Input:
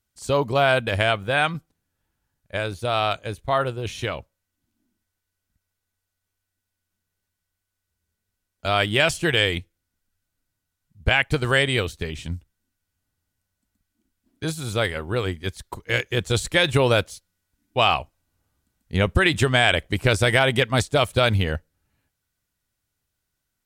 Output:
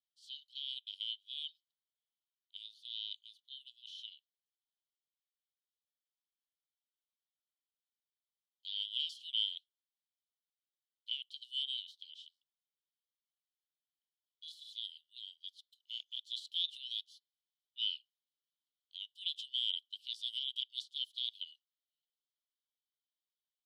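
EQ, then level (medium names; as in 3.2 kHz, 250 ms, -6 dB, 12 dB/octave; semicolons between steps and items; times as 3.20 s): Chebyshev high-pass 3 kHz, order 8; distance through air 370 m; -1.0 dB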